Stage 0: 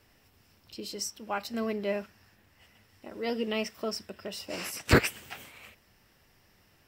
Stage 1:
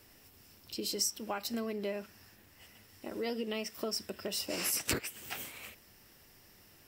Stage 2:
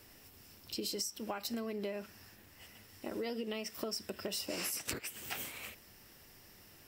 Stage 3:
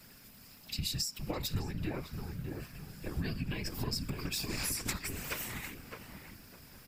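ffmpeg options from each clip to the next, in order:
ffmpeg -i in.wav -af "equalizer=frequency=330:width=1.2:gain=4,acompressor=threshold=-33dB:ratio=8,highshelf=frequency=5300:gain=11" out.wav
ffmpeg -i in.wav -af "acompressor=threshold=-36dB:ratio=12,volume=1.5dB" out.wav
ffmpeg -i in.wav -filter_complex "[0:a]asplit=2[link_01][link_02];[link_02]adelay=609,lowpass=frequency=1100:poles=1,volume=-3dB,asplit=2[link_03][link_04];[link_04]adelay=609,lowpass=frequency=1100:poles=1,volume=0.43,asplit=2[link_05][link_06];[link_06]adelay=609,lowpass=frequency=1100:poles=1,volume=0.43,asplit=2[link_07][link_08];[link_08]adelay=609,lowpass=frequency=1100:poles=1,volume=0.43,asplit=2[link_09][link_10];[link_10]adelay=609,lowpass=frequency=1100:poles=1,volume=0.43,asplit=2[link_11][link_12];[link_12]adelay=609,lowpass=frequency=1100:poles=1,volume=0.43[link_13];[link_01][link_03][link_05][link_07][link_09][link_11][link_13]amix=inputs=7:normalize=0,afftfilt=real='hypot(re,im)*cos(2*PI*random(0))':imag='hypot(re,im)*sin(2*PI*random(1))':win_size=512:overlap=0.75,afreqshift=-290,volume=8.5dB" out.wav

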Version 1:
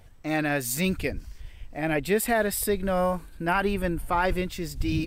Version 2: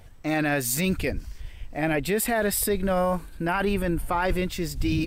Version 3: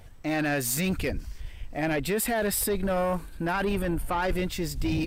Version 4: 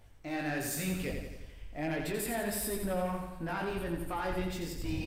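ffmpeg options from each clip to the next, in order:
ffmpeg -i in.wav -af "alimiter=limit=-19.5dB:level=0:latency=1:release=13,volume=3.5dB" out.wav
ffmpeg -i in.wav -af "asoftclip=type=tanh:threshold=-20.5dB" out.wav
ffmpeg -i in.wav -filter_complex "[0:a]flanger=delay=17.5:depth=4.4:speed=1.5,asplit=2[link_01][link_02];[link_02]aecho=0:1:87|174|261|348|435|522|609:0.531|0.297|0.166|0.0932|0.0522|0.0292|0.0164[link_03];[link_01][link_03]amix=inputs=2:normalize=0,volume=-6dB" out.wav

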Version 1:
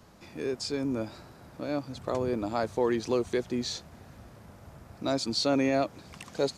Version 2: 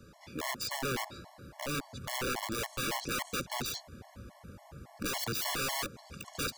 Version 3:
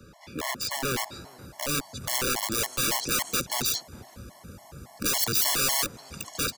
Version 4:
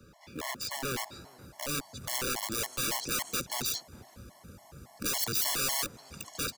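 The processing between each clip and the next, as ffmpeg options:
ffmpeg -i in.wav -af "aeval=exprs='(mod(25.1*val(0)+1,2)-1)/25.1':channel_layout=same,afftfilt=real='re*gt(sin(2*PI*3.6*pts/sr)*(1-2*mod(floor(b*sr/1024/570),2)),0)':imag='im*gt(sin(2*PI*3.6*pts/sr)*(1-2*mod(floor(b*sr/1024/570),2)),0)':win_size=1024:overlap=0.75,volume=2dB" out.wav
ffmpeg -i in.wav -filter_complex "[0:a]acrossover=split=120|4500[link_01][link_02][link_03];[link_02]asplit=2[link_04][link_05];[link_05]adelay=412,lowpass=frequency=1000:poles=1,volume=-23dB,asplit=2[link_06][link_07];[link_07]adelay=412,lowpass=frequency=1000:poles=1,volume=0.53,asplit=2[link_08][link_09];[link_09]adelay=412,lowpass=frequency=1000:poles=1,volume=0.53,asplit=2[link_10][link_11];[link_11]adelay=412,lowpass=frequency=1000:poles=1,volume=0.53[link_12];[link_04][link_06][link_08][link_10][link_12]amix=inputs=5:normalize=0[link_13];[link_03]dynaudnorm=framelen=630:gausssize=3:maxgain=8.5dB[link_14];[link_01][link_13][link_14]amix=inputs=3:normalize=0,volume=4.5dB" out.wav
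ffmpeg -i in.wav -af "acrusher=bits=6:mode=log:mix=0:aa=0.000001,volume=-5.5dB" out.wav

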